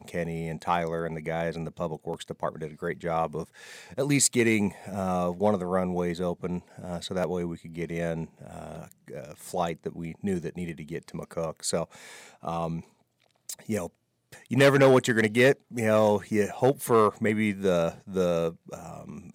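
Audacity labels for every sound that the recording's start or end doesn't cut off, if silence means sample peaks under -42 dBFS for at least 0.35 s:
13.490000	13.870000	sound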